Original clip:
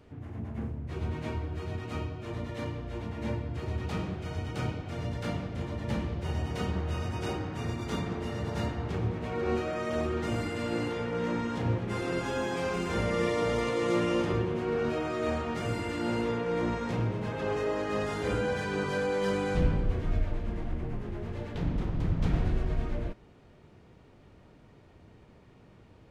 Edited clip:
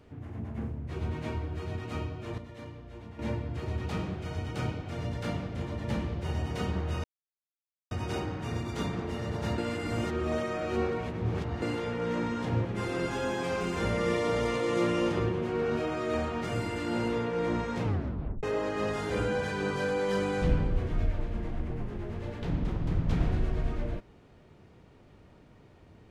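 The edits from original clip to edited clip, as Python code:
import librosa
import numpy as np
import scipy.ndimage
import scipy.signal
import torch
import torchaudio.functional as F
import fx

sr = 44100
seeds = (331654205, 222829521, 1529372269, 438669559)

y = fx.edit(x, sr, fx.clip_gain(start_s=2.38, length_s=0.81, db=-8.5),
    fx.insert_silence(at_s=7.04, length_s=0.87),
    fx.reverse_span(start_s=8.71, length_s=2.04),
    fx.tape_stop(start_s=16.97, length_s=0.59), tone=tone)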